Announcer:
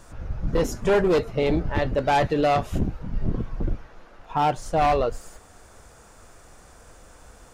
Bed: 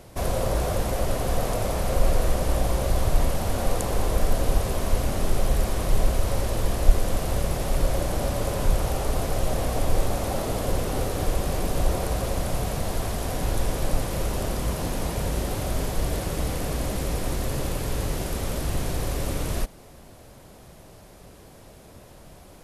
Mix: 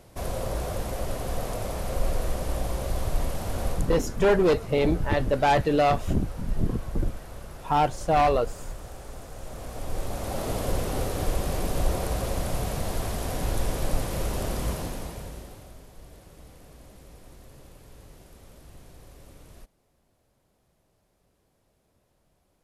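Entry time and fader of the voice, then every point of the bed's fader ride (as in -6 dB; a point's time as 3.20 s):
3.35 s, -0.5 dB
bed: 3.68 s -5.5 dB
4.02 s -16.5 dB
9.34 s -16.5 dB
10.50 s -2 dB
14.70 s -2 dB
15.83 s -22 dB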